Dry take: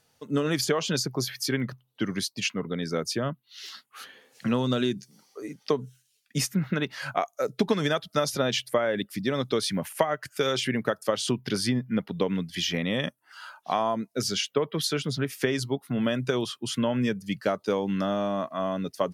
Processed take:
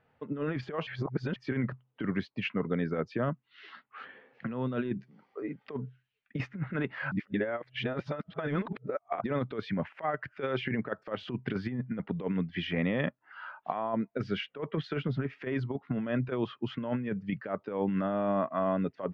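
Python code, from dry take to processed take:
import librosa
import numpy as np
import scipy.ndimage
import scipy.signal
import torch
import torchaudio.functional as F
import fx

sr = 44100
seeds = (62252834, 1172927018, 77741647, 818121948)

y = fx.edit(x, sr, fx.reverse_span(start_s=0.87, length_s=0.49),
    fx.reverse_span(start_s=7.12, length_s=2.12), tone=tone)
y = scipy.signal.sosfilt(scipy.signal.butter(4, 2300.0, 'lowpass', fs=sr, output='sos'), y)
y = fx.over_compress(y, sr, threshold_db=-28.0, ratio=-0.5)
y = y * 10.0 ** (-2.0 / 20.0)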